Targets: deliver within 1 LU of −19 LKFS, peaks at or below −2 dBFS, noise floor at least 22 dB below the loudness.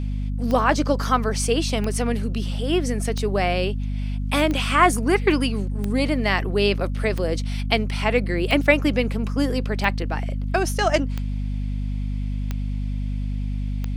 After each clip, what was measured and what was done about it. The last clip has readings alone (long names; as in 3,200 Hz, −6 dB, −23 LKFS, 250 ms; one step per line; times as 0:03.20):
number of clicks 11; mains hum 50 Hz; hum harmonics up to 250 Hz; level of the hum −23 dBFS; integrated loudness −23.0 LKFS; sample peak −2.0 dBFS; target loudness −19.0 LKFS
→ click removal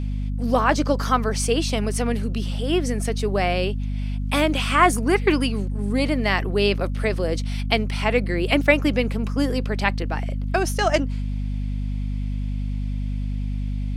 number of clicks 0; mains hum 50 Hz; hum harmonics up to 250 Hz; level of the hum −23 dBFS
→ mains-hum notches 50/100/150/200/250 Hz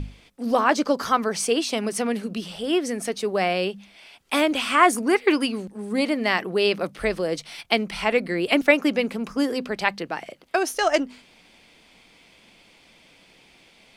mains hum none found; integrated loudness −23.5 LKFS; sample peak −2.0 dBFS; target loudness −19.0 LKFS
→ level +4.5 dB
brickwall limiter −2 dBFS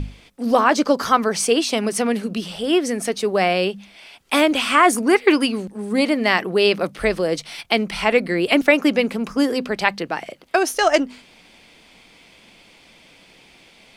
integrated loudness −19.0 LKFS; sample peak −2.0 dBFS; background noise floor −51 dBFS